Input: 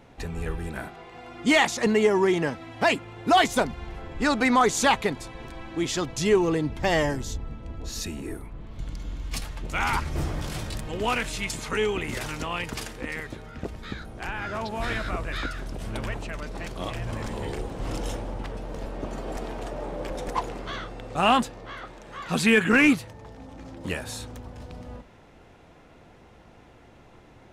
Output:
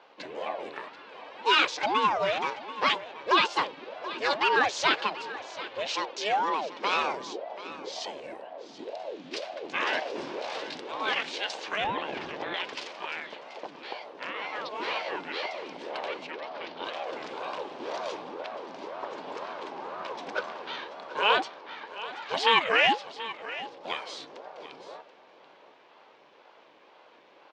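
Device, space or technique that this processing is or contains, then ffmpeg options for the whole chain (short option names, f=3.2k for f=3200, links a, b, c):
voice changer toy: -filter_complex "[0:a]aeval=exprs='val(0)*sin(2*PI*450*n/s+450*0.55/2*sin(2*PI*2*n/s))':c=same,highpass=580,equalizer=f=700:t=q:w=4:g=-5,equalizer=f=1.3k:t=q:w=4:g=-6,equalizer=f=1.9k:t=q:w=4:g=-4,lowpass=f=4.9k:w=0.5412,lowpass=f=4.9k:w=1.3066,asettb=1/sr,asplit=3[a][b][c];[a]atrim=end=6.094[d];[b]atrim=start=6.09:end=6.96,asetpts=PTS-STARTPTS,afade=t=in:d=0.004:c=qsin,afade=t=out:st=0.866:d=0.004:c=qsin,highpass=230[e];[c]atrim=start=6.956[f];[d][e]acrossfade=d=0.004:c1=hsin:c2=qsin[g];[g][f]acrossfade=d=0.004:c1=qsin:c2=hsin,aecho=1:1:733:0.178,asettb=1/sr,asplit=3[h][i][j];[h]atrim=end=11.844[k];[i]atrim=start=11.84:end=12.54,asetpts=PTS-STARTPTS,afade=t=in:d=0.004:c=qsin,afade=t=out:st=0.696:d=0.004:c=qsin,aemphasis=mode=reproduction:type=riaa[l];[j]atrim=start=12.536[m];[k][l]acrossfade=d=0.004:c1=hsin:c2=qsin[n];[n][m]acrossfade=d=0.004:c1=qsin:c2=hsin,asettb=1/sr,asplit=3[o][p][q];[o]atrim=end=16.314[r];[p]atrim=start=16.31:end=16.85,asetpts=PTS-STARTPTS,afade=t=in:d=0.004:c=qsin,afade=t=out:st=0.536:d=0.004:c=qsin,lowpass=f=5k:w=0.5412,lowpass=f=5k:w=1.3066[s];[q]atrim=start=16.846[t];[r][s]acrossfade=d=0.004:c1=hsin:c2=qsin[u];[u][t]acrossfade=d=0.004:c1=qsin:c2=hsin,volume=4dB"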